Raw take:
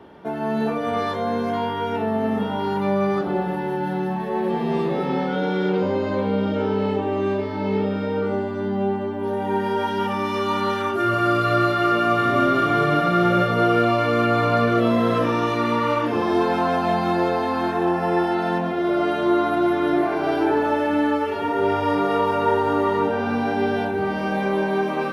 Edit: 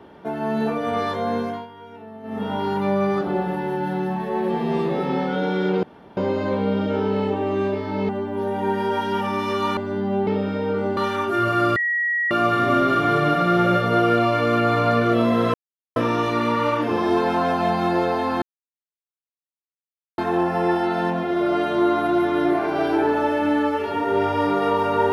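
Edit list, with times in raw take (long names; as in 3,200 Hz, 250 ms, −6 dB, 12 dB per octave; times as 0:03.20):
0:01.38–0:02.52: duck −16.5 dB, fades 0.29 s
0:05.83: splice in room tone 0.34 s
0:07.75–0:08.45: swap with 0:08.95–0:10.63
0:11.42–0:11.97: beep over 1,910 Hz −19 dBFS
0:15.20: splice in silence 0.42 s
0:17.66: splice in silence 1.76 s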